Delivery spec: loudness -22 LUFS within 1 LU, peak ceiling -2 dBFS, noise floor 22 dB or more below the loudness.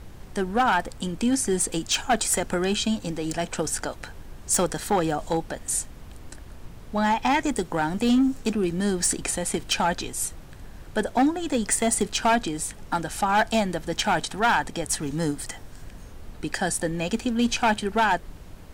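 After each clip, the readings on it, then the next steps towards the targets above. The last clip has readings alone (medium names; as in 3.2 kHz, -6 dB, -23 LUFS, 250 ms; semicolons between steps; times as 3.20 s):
clipped samples 1.2%; clipping level -15.5 dBFS; noise floor -44 dBFS; noise floor target -47 dBFS; loudness -25.0 LUFS; peak level -15.5 dBFS; loudness target -22.0 LUFS
-> clip repair -15.5 dBFS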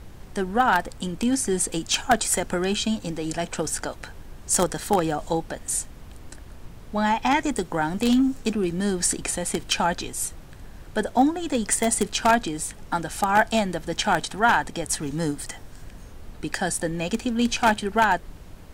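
clipped samples 0.0%; noise floor -44 dBFS; noise floor target -46 dBFS
-> noise print and reduce 6 dB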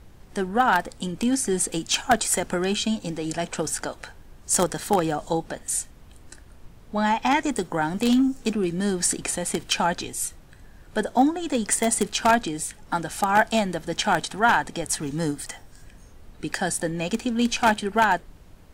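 noise floor -49 dBFS; loudness -24.0 LUFS; peak level -6.5 dBFS; loudness target -22.0 LUFS
-> trim +2 dB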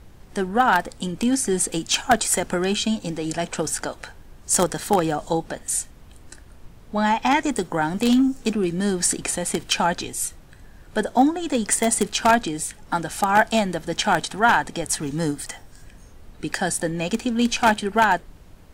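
loudness -22.0 LUFS; peak level -4.5 dBFS; noise floor -47 dBFS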